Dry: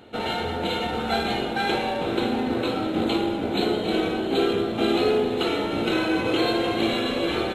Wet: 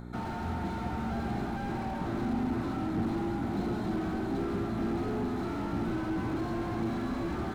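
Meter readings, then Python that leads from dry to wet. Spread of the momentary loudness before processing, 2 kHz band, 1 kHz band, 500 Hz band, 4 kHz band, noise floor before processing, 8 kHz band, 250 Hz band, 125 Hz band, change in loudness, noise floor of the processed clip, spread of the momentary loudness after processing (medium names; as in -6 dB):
4 LU, -13.5 dB, -9.0 dB, -13.5 dB, -22.5 dB, -29 dBFS, under -10 dB, -6.0 dB, 0.0 dB, -9.0 dB, -36 dBFS, 3 LU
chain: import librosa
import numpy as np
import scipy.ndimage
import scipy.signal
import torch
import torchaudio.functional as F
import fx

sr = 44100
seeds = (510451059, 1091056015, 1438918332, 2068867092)

y = fx.dmg_buzz(x, sr, base_hz=60.0, harmonics=9, level_db=-39.0, tilt_db=0, odd_only=False)
y = fx.fixed_phaser(y, sr, hz=1200.0, stages=4)
y = fx.slew_limit(y, sr, full_power_hz=13.0)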